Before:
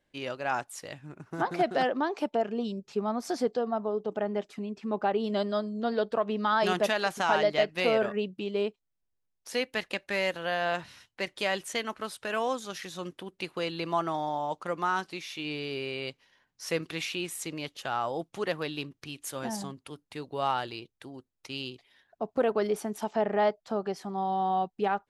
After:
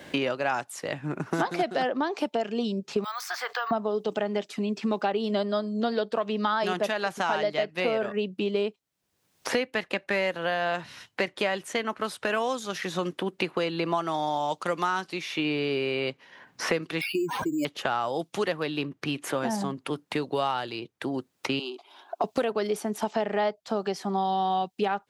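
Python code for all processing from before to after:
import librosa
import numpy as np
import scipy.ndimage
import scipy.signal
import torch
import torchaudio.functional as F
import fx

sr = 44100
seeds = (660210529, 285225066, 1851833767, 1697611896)

y = fx.chain(x, sr, fx.highpass(hz=1200.0, slope=24),
    fx.resample_bad(factor=2, down='none', up='hold'),
    fx.env_flatten(amount_pct=50), at=(3.04, 3.71))
y = fx.chain(y, sr, fx.spec_expand(power=3.2),
    fx.resample_bad(factor=6, down='none', up='hold'), at=(17.01, 17.65))
y = fx.chain(y, sr, fx.highpass(hz=390.0, slope=24),
    fx.fixed_phaser(hz=500.0, stages=6), at=(21.59, 22.24))
y = scipy.signal.sosfilt(scipy.signal.butter(2, 110.0, 'highpass', fs=sr, output='sos'), y)
y = fx.high_shelf(y, sr, hz=8100.0, db=-4.0)
y = fx.band_squash(y, sr, depth_pct=100)
y = y * 10.0 ** (1.5 / 20.0)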